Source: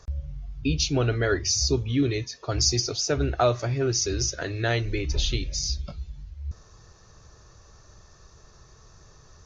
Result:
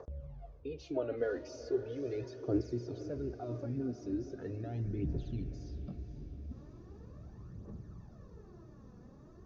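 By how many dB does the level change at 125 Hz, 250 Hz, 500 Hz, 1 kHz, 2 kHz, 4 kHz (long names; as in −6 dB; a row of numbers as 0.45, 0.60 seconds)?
−13.0, −8.5, −9.5, −19.0, −21.5, −32.0 decibels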